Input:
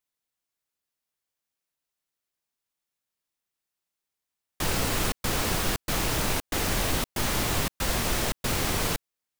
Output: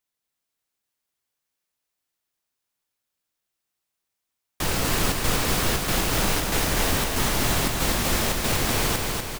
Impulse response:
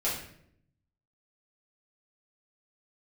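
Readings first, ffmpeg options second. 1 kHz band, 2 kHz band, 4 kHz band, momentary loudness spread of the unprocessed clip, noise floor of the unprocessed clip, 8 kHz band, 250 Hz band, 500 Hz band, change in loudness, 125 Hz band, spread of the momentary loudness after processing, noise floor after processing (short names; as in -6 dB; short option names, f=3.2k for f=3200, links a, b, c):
+4.0 dB, +4.0 dB, +4.0 dB, 2 LU, under -85 dBFS, +4.0 dB, +4.0 dB, +4.0 dB, +4.0 dB, +4.0 dB, 1 LU, -83 dBFS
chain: -af "aecho=1:1:245|490|735|980|1225|1470|1715|1960:0.668|0.368|0.202|0.111|0.0612|0.0336|0.0185|0.0102,volume=2dB"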